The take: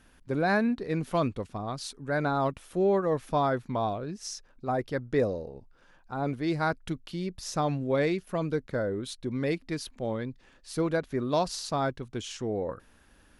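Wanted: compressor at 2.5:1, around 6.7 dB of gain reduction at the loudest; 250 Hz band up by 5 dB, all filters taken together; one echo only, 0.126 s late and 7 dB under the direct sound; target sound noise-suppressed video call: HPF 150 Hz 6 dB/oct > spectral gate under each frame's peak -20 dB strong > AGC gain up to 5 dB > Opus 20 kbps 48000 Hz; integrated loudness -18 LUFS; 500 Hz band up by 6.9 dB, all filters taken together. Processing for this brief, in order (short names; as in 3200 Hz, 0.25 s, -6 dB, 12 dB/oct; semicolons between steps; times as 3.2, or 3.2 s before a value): bell 250 Hz +5.5 dB; bell 500 Hz +7.5 dB; compressor 2.5:1, threshold -24 dBFS; HPF 150 Hz 6 dB/oct; echo 0.126 s -7 dB; spectral gate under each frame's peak -20 dB strong; AGC gain up to 5 dB; gain +11 dB; Opus 20 kbps 48000 Hz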